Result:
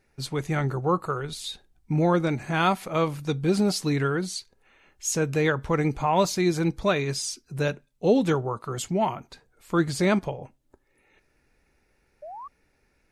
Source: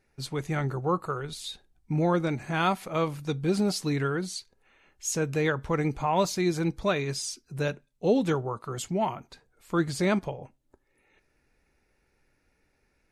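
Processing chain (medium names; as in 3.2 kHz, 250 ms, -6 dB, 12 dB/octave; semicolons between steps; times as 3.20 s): painted sound rise, 12.22–12.48 s, 570–1200 Hz -42 dBFS; trim +3 dB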